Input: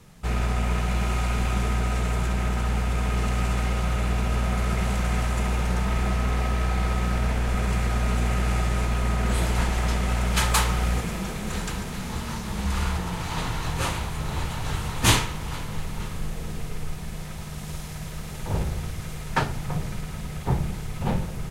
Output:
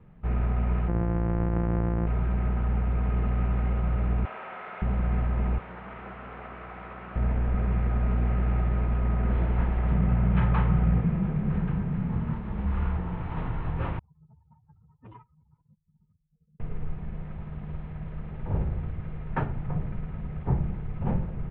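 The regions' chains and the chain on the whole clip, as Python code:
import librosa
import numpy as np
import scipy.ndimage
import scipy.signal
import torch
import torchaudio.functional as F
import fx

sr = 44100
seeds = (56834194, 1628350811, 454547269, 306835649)

y = fx.chain(x, sr, fx.sample_sort(block=256),
    fx.lowpass(hz=1900.0, slope=12), at=(0.88, 2.07))
y = fx.chain(y, sr, fx.highpass(hz=810.0, slope=12),
    fx.room_flutter(wall_m=9.5, rt60_s=0.87),
    fx.env_flatten(amount_pct=100), at=(4.25, 4.82))
y = fx.chain(y, sr, fx.highpass(hz=910.0, slope=6),
    fx.doppler_dist(depth_ms=0.33), at=(5.58, 7.16))
y = fx.chain(y, sr, fx.lowpass(hz=3800.0, slope=12),
    fx.peak_eq(hz=150.0, db=12.5, octaves=0.7), at=(9.91, 12.33))
y = fx.chain(y, sr, fx.spec_expand(power=3.5),
    fx.highpass(hz=450.0, slope=12),
    fx.transformer_sat(knee_hz=560.0), at=(13.99, 16.6))
y = scipy.signal.sosfilt(scipy.signal.bessel(8, 1600.0, 'lowpass', norm='mag', fs=sr, output='sos'), y)
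y = fx.low_shelf(y, sr, hz=380.0, db=6.0)
y = y * librosa.db_to_amplitude(-6.5)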